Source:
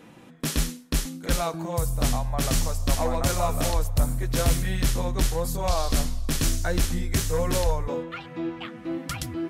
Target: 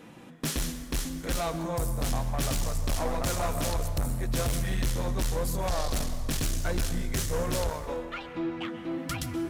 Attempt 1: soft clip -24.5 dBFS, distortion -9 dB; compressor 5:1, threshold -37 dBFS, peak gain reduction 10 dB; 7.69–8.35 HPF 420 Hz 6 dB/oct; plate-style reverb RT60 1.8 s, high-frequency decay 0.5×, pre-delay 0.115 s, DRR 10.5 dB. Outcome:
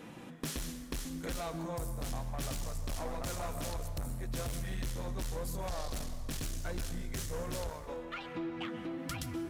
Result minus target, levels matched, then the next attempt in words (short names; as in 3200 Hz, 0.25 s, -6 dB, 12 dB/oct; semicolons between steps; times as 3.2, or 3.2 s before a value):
compressor: peak gain reduction +10 dB
soft clip -24.5 dBFS, distortion -9 dB; 7.69–8.35 HPF 420 Hz 6 dB/oct; plate-style reverb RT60 1.8 s, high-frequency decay 0.5×, pre-delay 0.115 s, DRR 10.5 dB